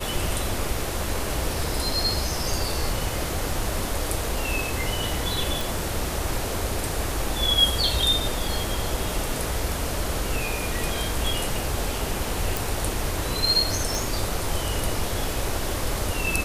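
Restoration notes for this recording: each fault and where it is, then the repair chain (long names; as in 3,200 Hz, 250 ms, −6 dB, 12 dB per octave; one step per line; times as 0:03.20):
0:05.61: click
0:12.57: click
0:13.95: click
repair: click removal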